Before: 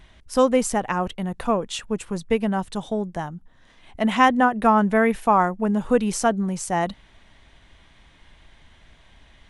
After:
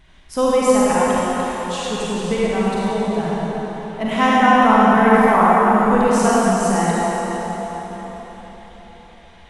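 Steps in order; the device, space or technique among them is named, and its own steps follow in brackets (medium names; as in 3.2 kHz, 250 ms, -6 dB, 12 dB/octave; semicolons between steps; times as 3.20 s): 1.12–1.77 s: Chebyshev high-pass 2.7 kHz, order 2; cathedral (reverberation RT60 4.6 s, pre-delay 36 ms, DRR -8.5 dB); trim -2.5 dB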